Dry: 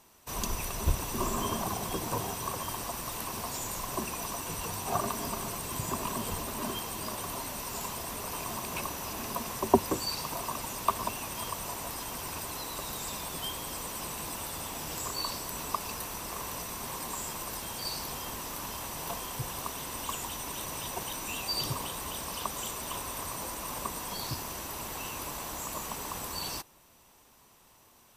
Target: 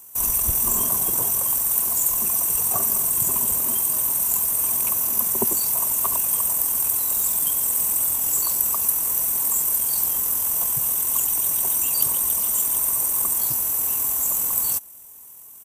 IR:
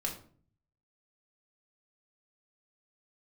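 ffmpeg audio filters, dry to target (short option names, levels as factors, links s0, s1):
-af "acontrast=29,aexciter=amount=8.8:drive=6.2:freq=6800,atempo=1.8,volume=0.596"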